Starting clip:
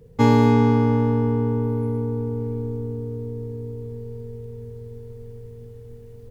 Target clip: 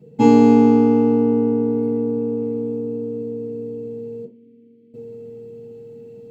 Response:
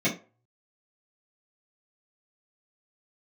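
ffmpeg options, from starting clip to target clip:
-filter_complex "[0:a]asettb=1/sr,asplit=3[a][b][c];[a]atrim=end=4.244[d];[b]atrim=start=4.24:end=4.94,asetpts=PTS-STARTPTS,afade=t=in:d=0.004:c=qsin,afade=t=out:st=0.696:d=0.004:c=qsin,asplit=3[e][f][g];[e]bandpass=f=270:t=q:w=8,volume=0dB[h];[f]bandpass=f=2.29k:t=q:w=8,volume=-6dB[i];[g]bandpass=f=3.01k:t=q:w=8,volume=-9dB[j];[h][i][j]amix=inputs=3:normalize=0[k];[c]atrim=start=4.936[l];[d][k]acrossfade=d=0.004:c1=hsin:c2=qsin[m];[m][l]acrossfade=d=0.004:c1=qsin:c2=hsin,lowshelf=f=68:g=-6.5[n];[1:a]atrim=start_sample=2205,asetrate=52920,aresample=44100[o];[n][o]afir=irnorm=-1:irlink=0,volume=-9dB"

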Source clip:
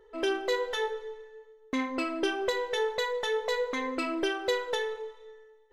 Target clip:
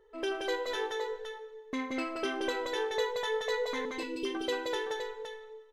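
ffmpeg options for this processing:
-filter_complex "[0:a]asettb=1/sr,asplit=3[a][b][c];[a]atrim=end=3.854[d];[b]atrim=start=3.85:end=4.35,asetpts=PTS-STARTPTS,afade=t=in:d=0.004:c=qsin,afade=t=out:st=0.496:d=0.004:c=qsin,asuperstop=centerf=1100:order=12:qfactor=0.51[e];[c]atrim=start=4.346[f];[d][e]acrossfade=d=0.004:c1=hsin:c2=qsin[g];[g][f]acrossfade=d=0.004:c1=qsin:c2=hsin,asplit=2[h][i];[i]aecho=0:1:176|185|517:0.668|0.335|0.398[j];[h][j]amix=inputs=2:normalize=0,volume=-5dB"

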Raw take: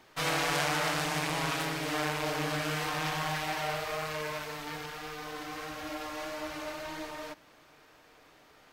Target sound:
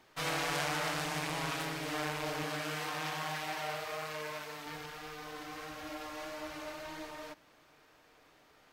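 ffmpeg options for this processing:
-filter_complex "[0:a]asettb=1/sr,asplit=3[a][b][c];[a]atrim=end=2.434[d];[b]atrim=start=2.43:end=4.66,asetpts=PTS-STARTPTS,afade=t=in:d=0.004:c=qsin,afade=t=out:st=2.226:d=0.004:c=qsin,highpass=f=170:p=1[e];[c]atrim=start=4.656[f];[d][e]acrossfade=d=0.004:c1=hsin:c2=qsin[g];[g][f]acrossfade=d=0.004:c1=qsin:c2=hsin,volume=-4.5dB"

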